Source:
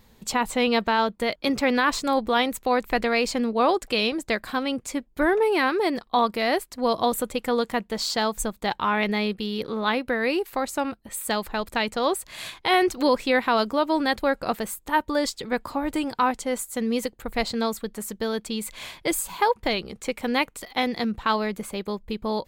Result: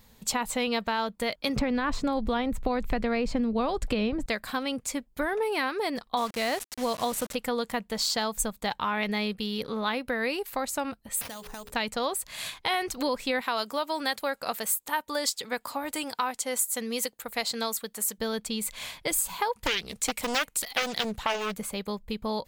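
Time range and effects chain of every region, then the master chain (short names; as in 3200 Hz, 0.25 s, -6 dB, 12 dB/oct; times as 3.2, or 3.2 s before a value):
1.56–4.26 RIAA curve playback + three-band squash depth 100%
6.17–7.35 requantised 6-bit, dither none + decimation joined by straight lines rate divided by 2×
11.21–11.72 notches 60/120/180/240/300/360/420/480/540 Hz + compressor 8:1, threshold -35 dBFS + sample-rate reducer 7700 Hz
13.41–18.18 HPF 450 Hz 6 dB/oct + high shelf 5000 Hz +5.5 dB
19.53–21.54 high shelf 3100 Hz +11.5 dB + Doppler distortion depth 0.82 ms
whole clip: bell 350 Hz -9 dB 0.28 oct; compressor 3:1, threshold -24 dBFS; high shelf 4700 Hz +6 dB; gain -2 dB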